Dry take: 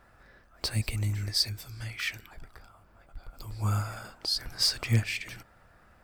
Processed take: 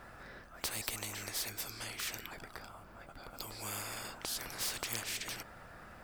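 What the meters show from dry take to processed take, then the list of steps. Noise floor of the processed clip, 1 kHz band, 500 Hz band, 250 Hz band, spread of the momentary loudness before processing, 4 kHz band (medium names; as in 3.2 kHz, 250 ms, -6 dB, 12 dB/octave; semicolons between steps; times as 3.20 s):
-55 dBFS, -2.5 dB, -2.5 dB, -10.5 dB, 16 LU, -10.0 dB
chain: spectrum-flattening compressor 4:1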